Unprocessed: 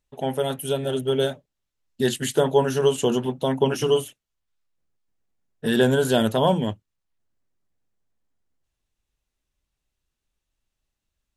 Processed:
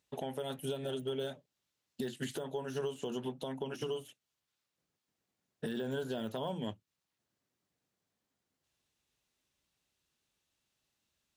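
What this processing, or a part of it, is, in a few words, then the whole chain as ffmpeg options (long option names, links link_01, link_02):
broadcast voice chain: -filter_complex "[0:a]asettb=1/sr,asplit=3[link_01][link_02][link_03];[link_01]atrim=end=5.864[link_04];[link_02]atrim=start=5.86:end=6.38,asetpts=PTS-STARTPTS,afade=type=in:duration=0.004:curve=qsin,afade=type=out:start_time=0.516:duration=0.004:curve=qsin,equalizer=frequency=8600:width_type=o:width=0.27:gain=-6[link_05];[link_03]atrim=start=6.376[link_06];[link_04][link_05]acrossfade=duration=0.004:curve1=hsin:curve2=qsin[link_07];[link_07][link_06]acrossfade=duration=0.004:curve1=qsin:curve2=hsin,highpass=120,deesser=0.85,acompressor=threshold=-35dB:ratio=5,equalizer=frequency=4200:width_type=o:width=1.5:gain=3.5,alimiter=level_in=4dB:limit=-24dB:level=0:latency=1:release=279,volume=-4dB,volume=1dB"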